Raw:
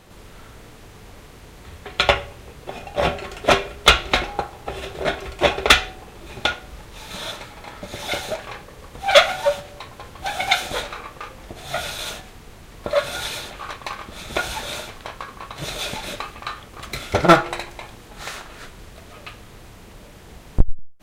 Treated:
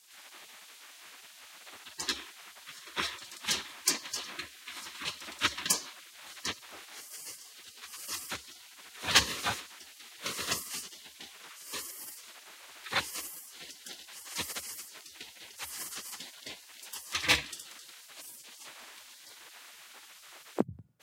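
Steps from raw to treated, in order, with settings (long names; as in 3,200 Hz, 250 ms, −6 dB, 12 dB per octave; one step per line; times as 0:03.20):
gate on every frequency bin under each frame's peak −20 dB weak
frequency shifter +65 Hz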